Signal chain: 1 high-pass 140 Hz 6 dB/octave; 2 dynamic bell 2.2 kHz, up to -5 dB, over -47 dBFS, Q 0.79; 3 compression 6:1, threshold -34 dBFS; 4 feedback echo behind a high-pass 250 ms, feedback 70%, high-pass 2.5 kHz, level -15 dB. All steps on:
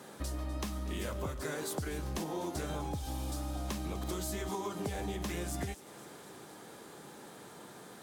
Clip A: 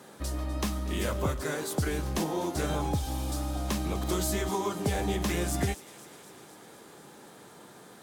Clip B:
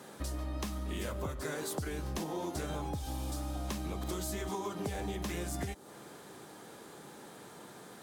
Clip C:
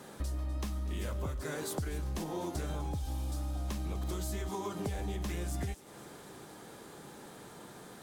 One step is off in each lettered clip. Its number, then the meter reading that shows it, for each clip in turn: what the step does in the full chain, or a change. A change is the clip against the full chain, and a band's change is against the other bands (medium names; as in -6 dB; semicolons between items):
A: 3, mean gain reduction 4.5 dB; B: 4, echo-to-direct -19.0 dB to none; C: 1, 125 Hz band +5.0 dB